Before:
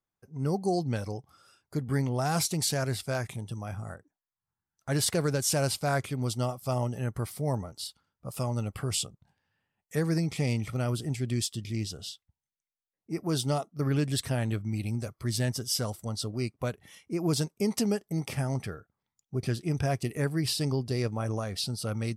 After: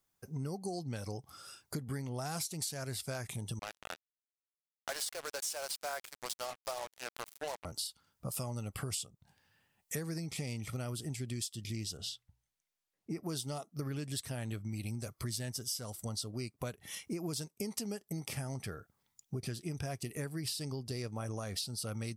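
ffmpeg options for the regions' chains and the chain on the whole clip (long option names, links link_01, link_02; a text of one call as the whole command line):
ffmpeg -i in.wav -filter_complex "[0:a]asettb=1/sr,asplit=3[link_01][link_02][link_03];[link_01]atrim=end=3.594[link_04];[link_02]atrim=start=3.59:end=7.65,asetpts=PTS-STARTPTS,afade=type=in:duration=0.004:curve=qsin,afade=type=out:start_time=4.056:duration=0.004:curve=qsin,highpass=frequency=540:width=0.5412,highpass=frequency=540:width=1.3066,highshelf=frequency=6800:gain=-7.5,acrusher=bits=5:mix=0:aa=0.5[link_05];[link_03]atrim=start=7.646[link_06];[link_04][link_05]acrossfade=duration=0.004:curve1=hsin:curve2=qsin[link_07];[link_07][link_06]acrossfade=duration=0.004:curve1=qsin:curve2=hsin,asettb=1/sr,asplit=3[link_08][link_09][link_10];[link_08]atrim=end=11.974[link_11];[link_09]atrim=start=11.97:end=13.23,asetpts=PTS-STARTPTS,afade=type=in:duration=0.004:curve=qsin,afade=type=out:start_time=1.256:duration=0.004:curve=qsin,aemphasis=mode=reproduction:type=cd,bandreject=frequency=60:width_type=h:width=6,bandreject=frequency=120:width_type=h:width=6[link_12];[link_10]atrim=start=13.226[link_13];[link_11][link_12]acrossfade=duration=0.004:curve1=hsin:curve2=qsin[link_14];[link_14][link_13]acrossfade=duration=0.004:curve1=qsin:curve2=hsin,highshelf=frequency=3700:gain=9,acompressor=threshold=-41dB:ratio=8,volume=4.5dB" out.wav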